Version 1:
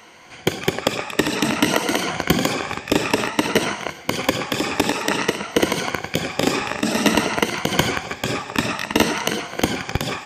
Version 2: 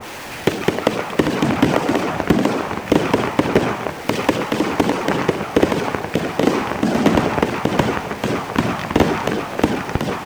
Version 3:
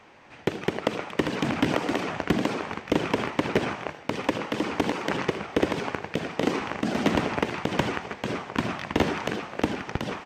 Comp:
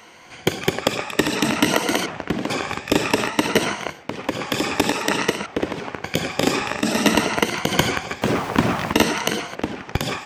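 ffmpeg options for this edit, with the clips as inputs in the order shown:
-filter_complex "[2:a]asplit=4[s0][s1][s2][s3];[0:a]asplit=6[s4][s5][s6][s7][s8][s9];[s4]atrim=end=2.062[s10];[s0]atrim=start=2.058:end=2.502[s11];[s5]atrim=start=2.498:end=4.07[s12];[s1]atrim=start=3.83:end=4.5[s13];[s6]atrim=start=4.26:end=5.462[s14];[s2]atrim=start=5.458:end=6.042[s15];[s7]atrim=start=6.038:end=8.222[s16];[1:a]atrim=start=8.218:end=8.932[s17];[s8]atrim=start=8.928:end=9.552[s18];[s3]atrim=start=9.548:end=9.952[s19];[s9]atrim=start=9.948[s20];[s10][s11]acrossfade=d=0.004:c1=hsin:c2=hsin[s21];[s21][s12]acrossfade=d=0.004:c1=hsin:c2=hsin[s22];[s22][s13]acrossfade=d=0.24:c1=tri:c2=tri[s23];[s23][s14]acrossfade=d=0.24:c1=tri:c2=tri[s24];[s24][s15]acrossfade=d=0.004:c1=hsin:c2=hsin[s25];[s25][s16]acrossfade=d=0.004:c1=hsin:c2=hsin[s26];[s26][s17]acrossfade=d=0.004:c1=hsin:c2=hsin[s27];[s27][s18]acrossfade=d=0.004:c1=hsin:c2=hsin[s28];[s28][s19]acrossfade=d=0.004:c1=hsin:c2=hsin[s29];[s29][s20]acrossfade=d=0.004:c1=hsin:c2=hsin"

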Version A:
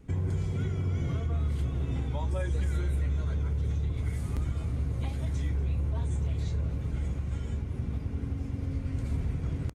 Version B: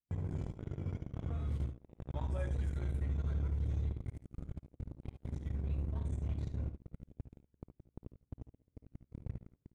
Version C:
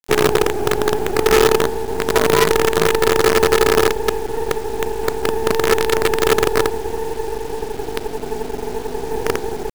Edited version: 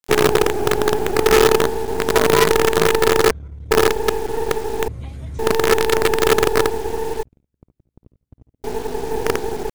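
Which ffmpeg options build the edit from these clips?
-filter_complex "[1:a]asplit=2[s0][s1];[2:a]asplit=4[s2][s3][s4][s5];[s2]atrim=end=3.312[s6];[s0]atrim=start=3.308:end=3.712[s7];[s3]atrim=start=3.708:end=4.882[s8];[0:a]atrim=start=4.878:end=5.392[s9];[s4]atrim=start=5.388:end=7.232[s10];[s1]atrim=start=7.228:end=8.642[s11];[s5]atrim=start=8.638[s12];[s6][s7]acrossfade=d=0.004:c1=hsin:c2=hsin[s13];[s13][s8]acrossfade=d=0.004:c1=hsin:c2=hsin[s14];[s14][s9]acrossfade=d=0.004:c1=hsin:c2=hsin[s15];[s15][s10]acrossfade=d=0.004:c1=hsin:c2=hsin[s16];[s16][s11]acrossfade=d=0.004:c1=hsin:c2=hsin[s17];[s17][s12]acrossfade=d=0.004:c1=hsin:c2=hsin"

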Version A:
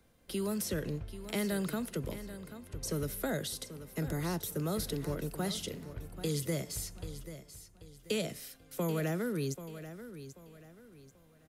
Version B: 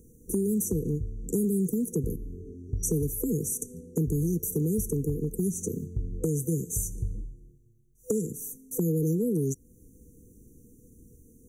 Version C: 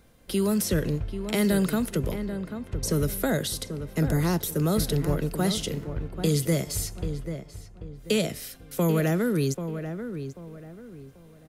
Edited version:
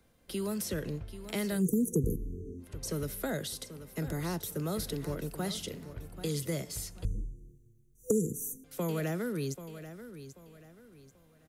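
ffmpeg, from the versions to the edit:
-filter_complex "[1:a]asplit=2[s0][s1];[0:a]asplit=3[s2][s3][s4];[s2]atrim=end=1.64[s5];[s0]atrim=start=1.54:end=2.68[s6];[s3]atrim=start=2.58:end=7.052[s7];[s1]atrim=start=7.048:end=8.642[s8];[s4]atrim=start=8.638[s9];[s5][s6]acrossfade=d=0.1:c1=tri:c2=tri[s10];[s10][s7]acrossfade=d=0.1:c1=tri:c2=tri[s11];[s11][s8]acrossfade=d=0.004:c1=hsin:c2=hsin[s12];[s12][s9]acrossfade=d=0.004:c1=hsin:c2=hsin"

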